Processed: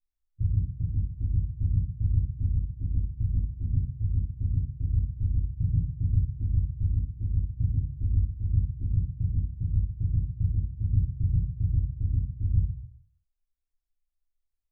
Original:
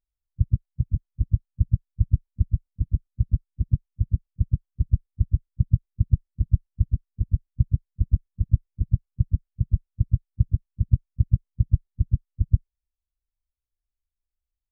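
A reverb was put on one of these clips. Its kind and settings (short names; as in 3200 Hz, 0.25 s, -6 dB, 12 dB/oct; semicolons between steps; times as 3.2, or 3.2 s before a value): shoebox room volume 200 m³, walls furnished, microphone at 3.4 m; gain -12.5 dB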